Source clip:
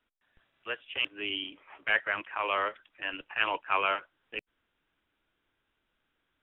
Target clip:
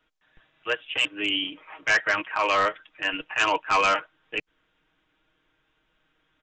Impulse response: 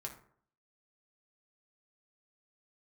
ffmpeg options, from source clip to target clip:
-af "aecho=1:1:6.4:0.59,aresample=16000,volume=13.3,asoftclip=hard,volume=0.075,aresample=44100,volume=2.24"

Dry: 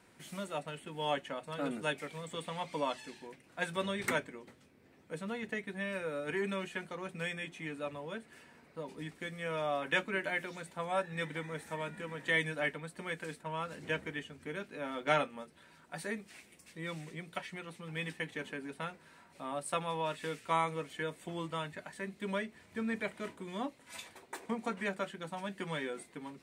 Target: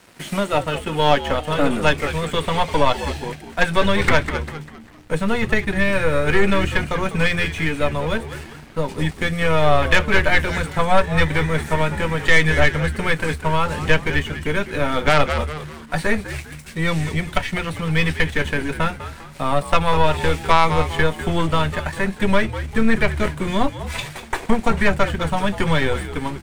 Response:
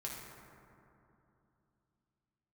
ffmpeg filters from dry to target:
-filter_complex "[0:a]acrossover=split=4000[s0][s1];[s1]acompressor=threshold=0.00141:ratio=4:attack=1:release=60[s2];[s0][s2]amix=inputs=2:normalize=0,aeval=exprs='0.2*(cos(1*acos(clip(val(0)/0.2,-1,1)))-cos(1*PI/2))+0.0501*(cos(2*acos(clip(val(0)/0.2,-1,1)))-cos(2*PI/2))+0.00794*(cos(6*acos(clip(val(0)/0.2,-1,1)))-cos(6*PI/2))+0.0224*(cos(8*acos(clip(val(0)/0.2,-1,1)))-cos(8*PI/2))':c=same,asplit=2[s3][s4];[s4]acompressor=threshold=0.01:ratio=6,volume=0.944[s5];[s3][s5]amix=inputs=2:normalize=0,aeval=exprs='sgn(val(0))*max(abs(val(0))-0.00133,0)':c=same,asubboost=boost=5:cutoff=110,asplit=5[s6][s7][s8][s9][s10];[s7]adelay=199,afreqshift=-76,volume=0.251[s11];[s8]adelay=398,afreqshift=-152,volume=0.0977[s12];[s9]adelay=597,afreqshift=-228,volume=0.038[s13];[s10]adelay=796,afreqshift=-304,volume=0.015[s14];[s6][s11][s12][s13][s14]amix=inputs=5:normalize=0,alimiter=level_in=7.5:limit=0.891:release=50:level=0:latency=1,volume=0.841"

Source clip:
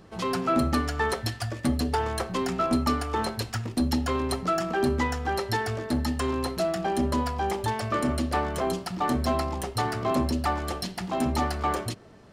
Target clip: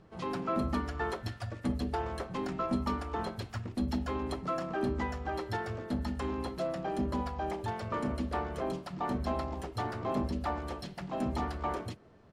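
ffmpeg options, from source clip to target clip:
-filter_complex "[0:a]lowpass=f=2700:p=1,asplit=2[s0][s1];[s1]asetrate=35002,aresample=44100,atempo=1.25992,volume=0.501[s2];[s0][s2]amix=inputs=2:normalize=0,volume=0.398" -ar 48000 -c:a wmav2 -b:a 128k

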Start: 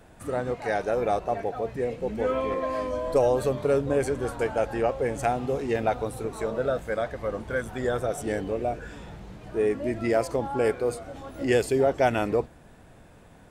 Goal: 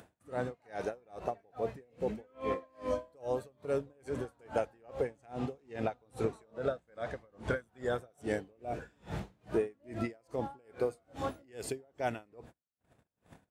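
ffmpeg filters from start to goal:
-filter_complex "[0:a]asettb=1/sr,asplit=3[s0][s1][s2];[s0]atrim=end=5.044[s3];[s1]atrim=start=5.04:end=7.55,asetpts=PTS-STARTPTS,afade=t=in:d=0.004:c=qsin,afade=t=out:st=2.506:d=0.004:c=qsin,lowpass=9500[s4];[s2]atrim=start=7.546[s5];[s3][s4]acrossfade=d=0.004:c1=hsin:c2=qsin[s6];[s6][s5]acrossfade=d=0.004:c1=qsin:c2=hsin,acompressor=threshold=0.02:ratio=12,highpass=67,agate=range=0.0112:threshold=0.00447:ratio=16:detection=peak,acompressor=mode=upward:threshold=0.00794:ratio=2.5,aeval=exprs='val(0)*pow(10,-35*(0.5-0.5*cos(2*PI*2.4*n/s))/20)':c=same,volume=2.37"

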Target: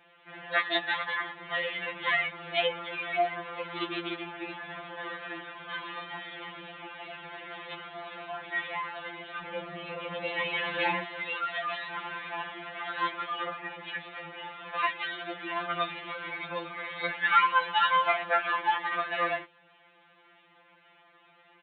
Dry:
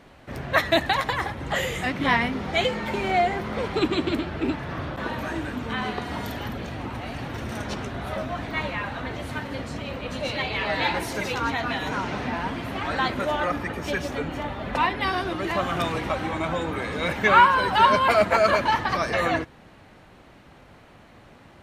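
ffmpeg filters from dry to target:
-af "aresample=8000,aresample=44100,asetnsamples=n=441:p=0,asendcmd='9.42 highpass f 310;11.04 highpass f 1500',highpass=f=1200:p=1,afftfilt=real='re*2.83*eq(mod(b,8),0)':imag='im*2.83*eq(mod(b,8),0)':win_size=2048:overlap=0.75"

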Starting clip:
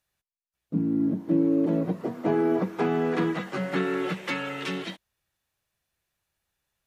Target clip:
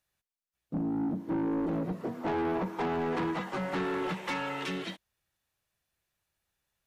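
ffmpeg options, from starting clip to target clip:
-filter_complex "[0:a]asettb=1/sr,asplit=3[s0][s1][s2];[s0]atrim=end=2.214[s3];[s1]atrim=start=2.21:end=4.65,asetpts=PTS-STARTPTS,afade=t=in:d=0.004:c=qsin,afade=t=out:st=2.436:d=0.004:c=qsin,equalizer=f=920:w=2.9:g=10[s4];[s2]atrim=start=4.646[s5];[s3][s4]acrossfade=d=0.004:c1=hsin:c2=qsin[s6];[s6][s5]acrossfade=d=0.004:c1=qsin:c2=hsin,asoftclip=type=tanh:threshold=0.0562,volume=0.794"

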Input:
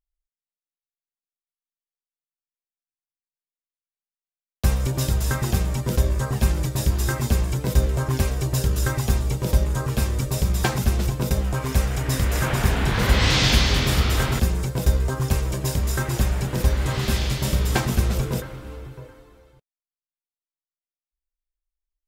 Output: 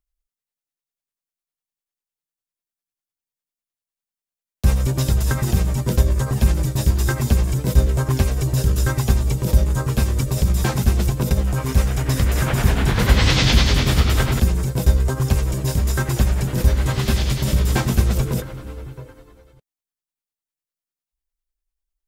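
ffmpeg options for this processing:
-filter_complex "[0:a]acrossover=split=350|5900[s0][s1][s2];[s1]tremolo=f=10:d=0.67[s3];[s2]alimiter=level_in=1.78:limit=0.0631:level=0:latency=1:release=73,volume=0.562[s4];[s0][s3][s4]amix=inputs=3:normalize=0,volume=1.58"

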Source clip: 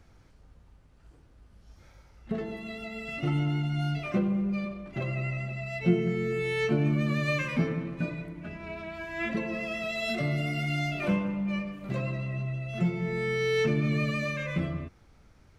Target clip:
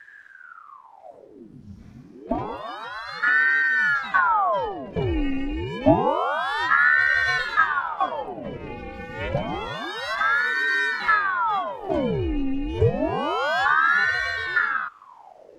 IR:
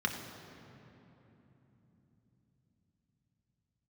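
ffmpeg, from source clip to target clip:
-af "lowshelf=f=300:g=11,aeval=exprs='val(0)*sin(2*PI*920*n/s+920*0.85/0.28*sin(2*PI*0.28*n/s))':c=same,volume=1.33"

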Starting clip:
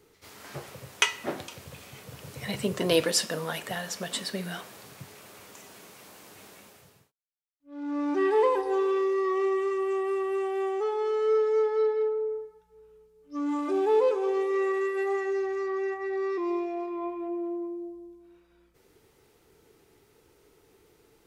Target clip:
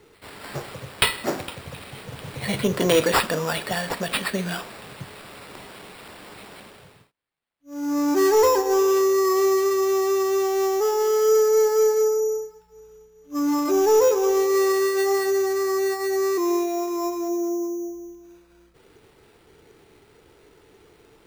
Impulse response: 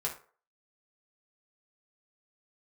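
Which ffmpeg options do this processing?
-af "acrusher=samples=7:mix=1:aa=0.000001,asoftclip=type=tanh:threshold=0.133,volume=2.37"

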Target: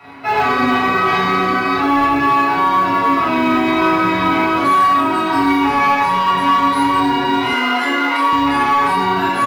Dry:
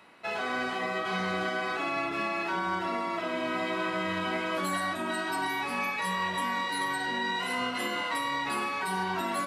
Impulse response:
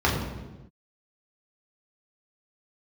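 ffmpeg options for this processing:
-filter_complex "[0:a]aecho=1:1:7.1:0.64,aecho=1:1:26|40:0.562|0.596[s0];[1:a]atrim=start_sample=2205,atrim=end_sample=3969[s1];[s0][s1]afir=irnorm=-1:irlink=0,dynaudnorm=f=320:g=5:m=3.76,asoftclip=type=tanh:threshold=0.562,flanger=delay=7.8:depth=5.2:regen=-54:speed=0.41:shape=sinusoidal,acrusher=bits=9:mode=log:mix=0:aa=0.000001,asettb=1/sr,asplit=3[s2][s3][s4];[s2]atrim=end=7.534[s5];[s3]atrim=start=7.53:end=8.33,asetpts=PTS-STARTPTS,afade=t=in:d=0.004:c=qsin,afade=t=out:st=0.796:d=0.004:c=qsin,highpass=f=280:w=0.5412,highpass=f=280:w=1.3066[s6];[s4]atrim=start=8.326[s7];[s5][s6]acrossfade=d=0.004:c1=hsin:c2=qsin[s8];[s8][s7]acrossfade=d=0.004:c1=qsin:c2=hsin,volume=1.41"

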